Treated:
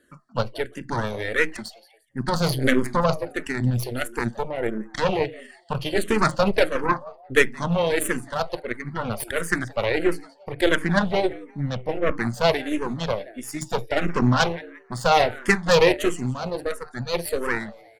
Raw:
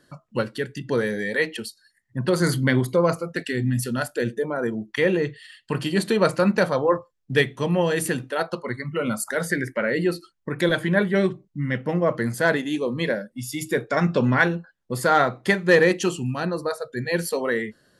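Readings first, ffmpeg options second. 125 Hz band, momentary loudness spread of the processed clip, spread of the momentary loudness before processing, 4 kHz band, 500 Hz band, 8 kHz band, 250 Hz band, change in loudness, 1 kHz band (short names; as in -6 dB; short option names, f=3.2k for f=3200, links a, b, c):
-1.5 dB, 11 LU, 9 LU, +2.5 dB, -1.0 dB, -0.5 dB, -2.0 dB, -0.5 dB, +2.0 dB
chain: -filter_complex "[0:a]asplit=4[a][b][c][d];[b]adelay=174,afreqshift=110,volume=-18dB[e];[c]adelay=348,afreqshift=220,volume=-27.6dB[f];[d]adelay=522,afreqshift=330,volume=-37.3dB[g];[a][e][f][g]amix=inputs=4:normalize=0,aeval=exprs='0.562*(cos(1*acos(clip(val(0)/0.562,-1,1)))-cos(1*PI/2))+0.1*(cos(6*acos(clip(val(0)/0.562,-1,1)))-cos(6*PI/2))+0.0251*(cos(7*acos(clip(val(0)/0.562,-1,1)))-cos(7*PI/2))':c=same,asplit=2[h][i];[i]afreqshift=-1.5[j];[h][j]amix=inputs=2:normalize=1,volume=3dB"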